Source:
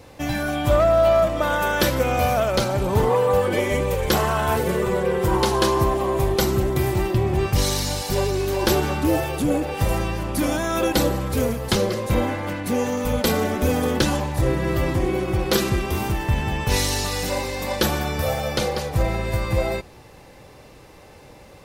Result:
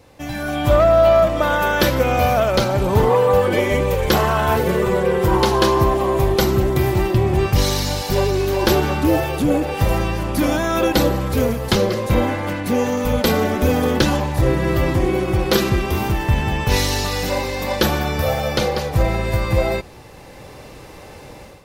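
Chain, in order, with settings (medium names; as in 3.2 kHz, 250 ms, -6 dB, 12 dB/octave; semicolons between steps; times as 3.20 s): level rider; dynamic bell 8.9 kHz, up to -7 dB, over -37 dBFS, Q 1.2; trim -4 dB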